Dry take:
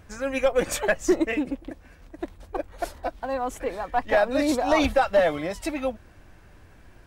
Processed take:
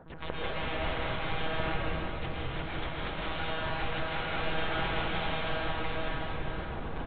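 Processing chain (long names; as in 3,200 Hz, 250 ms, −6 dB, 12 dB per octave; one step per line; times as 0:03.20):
low-pass filter 1,200 Hz 24 dB per octave
mains-hum notches 50/100/150/200/250/300 Hz
comb filter 5.6 ms, depth 47%
reversed playback
downward compressor 10 to 1, threshold −38 dBFS, peak gain reduction 25.5 dB
reversed playback
harmonic generator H 2 −10 dB, 4 −28 dB, 8 −8 dB, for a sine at −27 dBFS
in parallel at −10 dB: bit reduction 6 bits
on the sum: wrap-around overflow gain 36 dB
log-companded quantiser 8 bits
one-pitch LPC vocoder at 8 kHz 160 Hz
dense smooth reverb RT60 3 s, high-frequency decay 0.95×, pre-delay 100 ms, DRR −6.5 dB
feedback echo with a swinging delay time 85 ms, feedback 36%, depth 183 cents, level −14.5 dB
level +4 dB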